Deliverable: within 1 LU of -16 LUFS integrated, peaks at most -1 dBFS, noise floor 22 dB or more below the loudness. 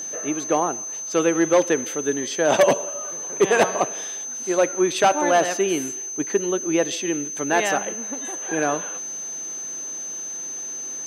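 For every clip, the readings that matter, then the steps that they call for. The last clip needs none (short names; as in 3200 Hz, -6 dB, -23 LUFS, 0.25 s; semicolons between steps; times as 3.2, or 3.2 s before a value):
steady tone 6200 Hz; tone level -29 dBFS; loudness -22.5 LUFS; peak -3.0 dBFS; loudness target -16.0 LUFS
-> notch 6200 Hz, Q 30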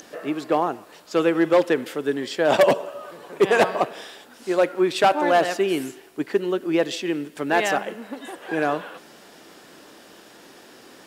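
steady tone none; loudness -22.0 LUFS; peak -3.0 dBFS; loudness target -16.0 LUFS
-> gain +6 dB; limiter -1 dBFS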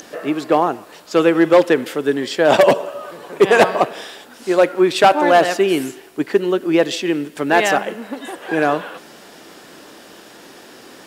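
loudness -16.5 LUFS; peak -1.0 dBFS; noise floor -43 dBFS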